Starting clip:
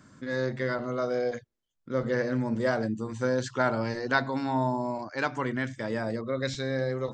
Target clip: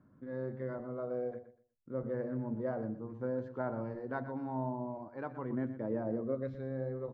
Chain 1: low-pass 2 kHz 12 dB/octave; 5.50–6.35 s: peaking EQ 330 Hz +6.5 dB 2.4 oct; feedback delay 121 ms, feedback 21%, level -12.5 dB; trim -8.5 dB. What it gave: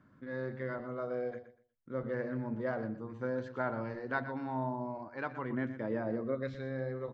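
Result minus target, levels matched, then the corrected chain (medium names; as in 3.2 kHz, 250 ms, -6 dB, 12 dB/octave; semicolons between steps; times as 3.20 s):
2 kHz band +8.5 dB
low-pass 880 Hz 12 dB/octave; 5.50–6.35 s: peaking EQ 330 Hz +6.5 dB 2.4 oct; feedback delay 121 ms, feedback 21%, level -12.5 dB; trim -8.5 dB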